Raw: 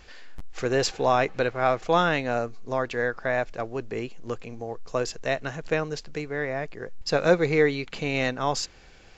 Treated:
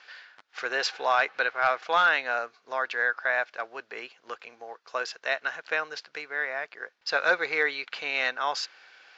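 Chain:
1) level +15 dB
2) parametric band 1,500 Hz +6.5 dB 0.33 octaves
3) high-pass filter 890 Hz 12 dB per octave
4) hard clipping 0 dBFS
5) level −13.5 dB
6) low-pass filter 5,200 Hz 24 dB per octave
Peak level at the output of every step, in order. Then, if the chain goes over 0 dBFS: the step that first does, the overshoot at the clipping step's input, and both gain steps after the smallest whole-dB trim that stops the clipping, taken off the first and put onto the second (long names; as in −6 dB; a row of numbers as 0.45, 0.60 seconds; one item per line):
+8.0, +9.5, +5.0, 0.0, −13.5, −12.5 dBFS
step 1, 5.0 dB
step 1 +10 dB, step 5 −8.5 dB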